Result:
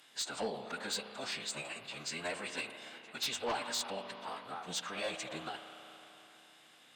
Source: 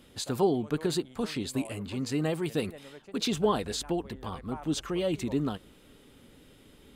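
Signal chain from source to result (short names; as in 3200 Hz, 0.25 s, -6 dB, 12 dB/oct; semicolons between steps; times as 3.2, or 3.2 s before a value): HPF 950 Hz 12 dB/oct; spring tank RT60 3.6 s, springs 35 ms, chirp 25 ms, DRR 8.5 dB; formant-preserving pitch shift -10 st; added harmonics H 5 -10 dB, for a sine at -21 dBFS; gain -5.5 dB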